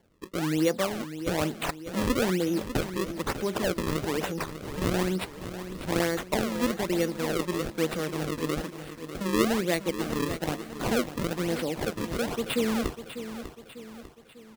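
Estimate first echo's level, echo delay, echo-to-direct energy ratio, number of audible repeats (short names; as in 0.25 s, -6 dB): -11.0 dB, 0.597 s, -10.0 dB, 4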